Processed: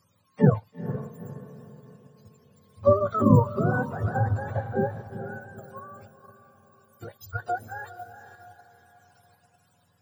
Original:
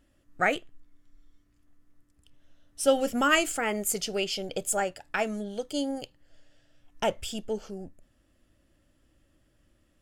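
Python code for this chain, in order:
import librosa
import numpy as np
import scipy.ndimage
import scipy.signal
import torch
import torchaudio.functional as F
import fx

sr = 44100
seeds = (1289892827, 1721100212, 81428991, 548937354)

p1 = fx.octave_mirror(x, sr, pivot_hz=560.0)
p2 = fx.spec_repair(p1, sr, seeds[0], start_s=4.58, length_s=0.41, low_hz=1800.0, high_hz=10000.0, source='both')
p3 = fx.pre_emphasis(p2, sr, coefficient=0.9, at=(5.07, 7.32), fade=0.02)
p4 = fx.echo_diffused(p3, sr, ms=450, feedback_pct=42, wet_db=-11.0)
p5 = fx.level_steps(p4, sr, step_db=11)
y = p4 + (p5 * librosa.db_to_amplitude(0.0))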